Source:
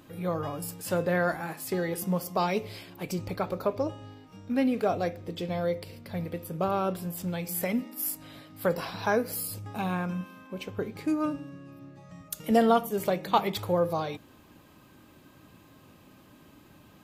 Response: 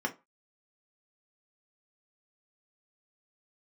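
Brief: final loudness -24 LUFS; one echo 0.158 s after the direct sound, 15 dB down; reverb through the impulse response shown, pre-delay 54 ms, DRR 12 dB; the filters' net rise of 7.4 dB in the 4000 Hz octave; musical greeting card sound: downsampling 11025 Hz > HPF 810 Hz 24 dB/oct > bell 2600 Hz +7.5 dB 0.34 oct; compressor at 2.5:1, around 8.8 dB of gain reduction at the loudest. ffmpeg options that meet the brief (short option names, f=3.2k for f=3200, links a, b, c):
-filter_complex "[0:a]equalizer=f=4k:t=o:g=7.5,acompressor=threshold=-30dB:ratio=2.5,aecho=1:1:158:0.178,asplit=2[a][b];[1:a]atrim=start_sample=2205,adelay=54[c];[b][c]afir=irnorm=-1:irlink=0,volume=-18dB[d];[a][d]amix=inputs=2:normalize=0,aresample=11025,aresample=44100,highpass=f=810:w=0.5412,highpass=f=810:w=1.3066,equalizer=f=2.6k:t=o:w=0.34:g=7.5,volume=14.5dB"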